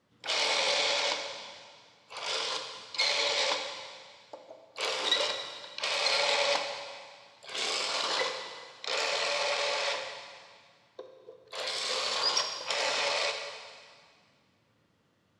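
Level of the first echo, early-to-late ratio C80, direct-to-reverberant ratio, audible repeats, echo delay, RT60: no echo, 7.0 dB, 4.5 dB, no echo, no echo, 1.9 s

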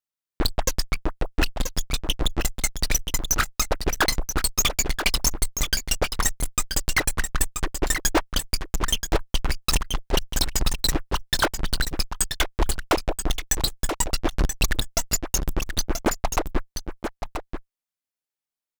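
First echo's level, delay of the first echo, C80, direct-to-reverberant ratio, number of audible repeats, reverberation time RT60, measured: -7.5 dB, 981 ms, no reverb, no reverb, 1, no reverb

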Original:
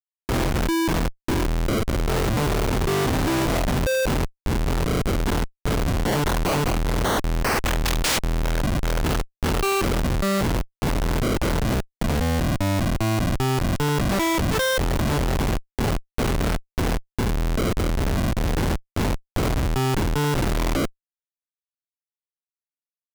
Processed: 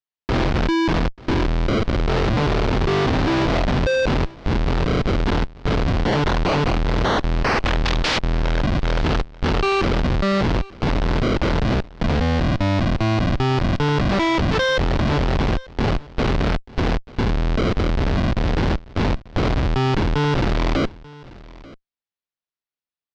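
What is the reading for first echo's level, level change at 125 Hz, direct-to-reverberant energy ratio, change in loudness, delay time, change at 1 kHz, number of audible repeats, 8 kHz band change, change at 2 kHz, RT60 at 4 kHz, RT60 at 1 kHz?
-21.5 dB, +3.0 dB, no reverb, +2.5 dB, 888 ms, +3.0 dB, 1, -9.5 dB, +3.0 dB, no reverb, no reverb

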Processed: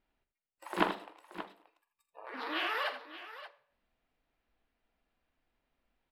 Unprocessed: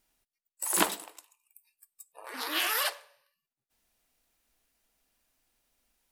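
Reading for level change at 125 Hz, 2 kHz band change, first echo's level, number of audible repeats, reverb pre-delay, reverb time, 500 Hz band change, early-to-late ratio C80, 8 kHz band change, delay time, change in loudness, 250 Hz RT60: no reading, -3.0 dB, -13.5 dB, 3, no reverb, no reverb, 0.0 dB, no reverb, -28.5 dB, 45 ms, -7.5 dB, no reverb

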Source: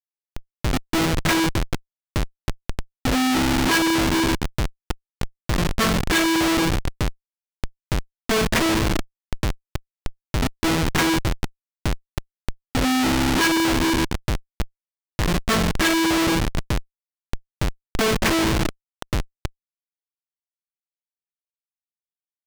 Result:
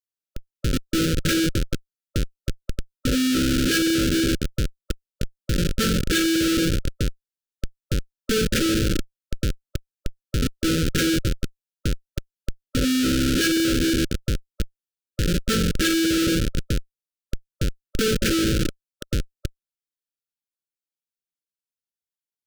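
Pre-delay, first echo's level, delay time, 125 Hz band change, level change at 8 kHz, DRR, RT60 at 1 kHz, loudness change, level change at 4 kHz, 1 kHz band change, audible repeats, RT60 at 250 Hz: no reverb, no echo, no echo, 0.0 dB, 0.0 dB, no reverb, no reverb, -1.0 dB, -0.5 dB, -11.5 dB, no echo, no reverb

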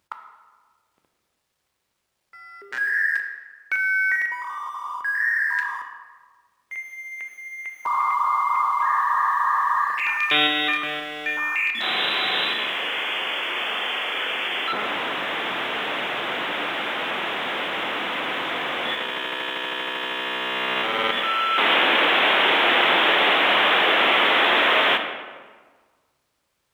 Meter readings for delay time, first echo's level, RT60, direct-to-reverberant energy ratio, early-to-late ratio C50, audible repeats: no echo, no echo, 1.5 s, 4.5 dB, 6.5 dB, no echo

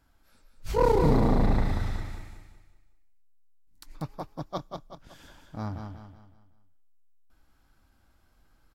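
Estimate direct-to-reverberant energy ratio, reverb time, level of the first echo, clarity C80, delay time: no reverb, no reverb, -6.0 dB, no reverb, 187 ms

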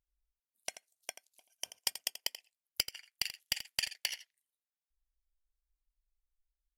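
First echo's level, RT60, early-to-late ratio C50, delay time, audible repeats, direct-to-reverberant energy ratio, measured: -12.5 dB, no reverb, no reverb, 84 ms, 1, no reverb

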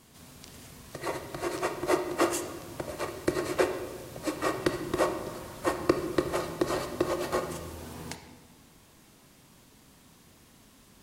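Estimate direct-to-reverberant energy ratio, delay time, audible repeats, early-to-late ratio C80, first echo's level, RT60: 6.0 dB, no echo, no echo, 9.5 dB, no echo, 1.4 s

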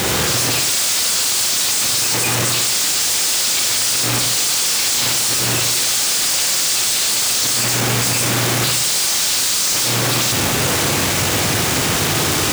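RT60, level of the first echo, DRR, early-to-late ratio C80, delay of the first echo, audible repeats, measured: 0.65 s, no echo, 3.0 dB, 10.0 dB, no echo, no echo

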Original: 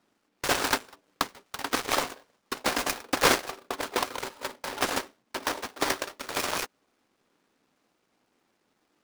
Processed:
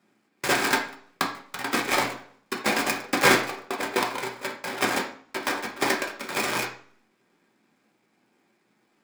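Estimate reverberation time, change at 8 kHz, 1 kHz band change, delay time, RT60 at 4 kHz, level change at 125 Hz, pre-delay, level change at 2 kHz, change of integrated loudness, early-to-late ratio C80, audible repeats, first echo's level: 0.50 s, +0.5 dB, +3.0 dB, no echo, 0.45 s, +5.0 dB, 3 ms, +5.5 dB, +3.5 dB, 12.5 dB, no echo, no echo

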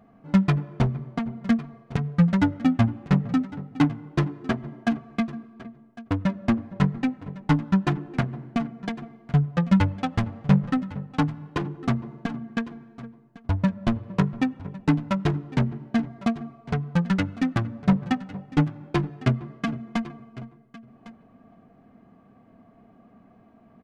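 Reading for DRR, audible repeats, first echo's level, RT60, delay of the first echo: no reverb, 1, -18.0 dB, no reverb, 1105 ms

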